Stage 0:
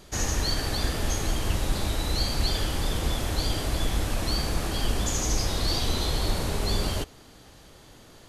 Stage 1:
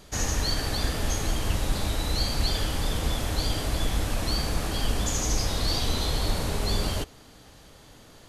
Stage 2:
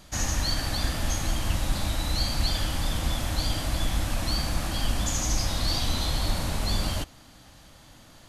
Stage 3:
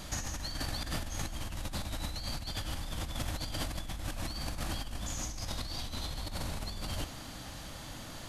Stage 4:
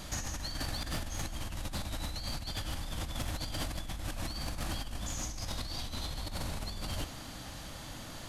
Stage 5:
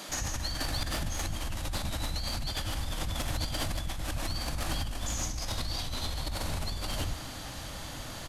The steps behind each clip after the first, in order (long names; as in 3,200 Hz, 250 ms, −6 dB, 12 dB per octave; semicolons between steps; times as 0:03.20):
notch filter 360 Hz, Q 12
parametric band 430 Hz −14 dB 0.29 octaves
compressor whose output falls as the input rises −35 dBFS, ratio −1; level −2 dB
gain into a clipping stage and back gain 28 dB
multiband delay without the direct sound highs, lows 90 ms, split 210 Hz; level +4.5 dB